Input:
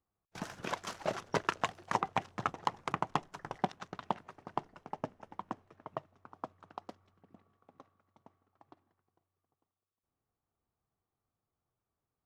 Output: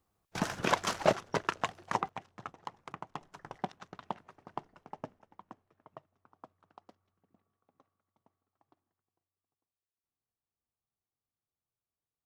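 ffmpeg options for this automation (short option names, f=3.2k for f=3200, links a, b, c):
-af "asetnsamples=n=441:p=0,asendcmd='1.13 volume volume 0dB;2.09 volume volume -10dB;3.21 volume volume -4dB;5.19 volume volume -10.5dB',volume=9dB"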